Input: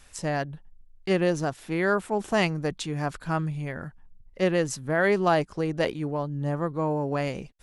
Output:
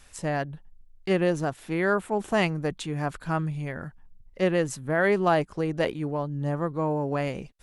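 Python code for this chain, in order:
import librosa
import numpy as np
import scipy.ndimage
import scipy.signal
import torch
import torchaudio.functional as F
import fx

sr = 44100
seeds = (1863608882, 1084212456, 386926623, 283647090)

y = fx.dynamic_eq(x, sr, hz=5300.0, q=1.6, threshold_db=-52.0, ratio=4.0, max_db=-6)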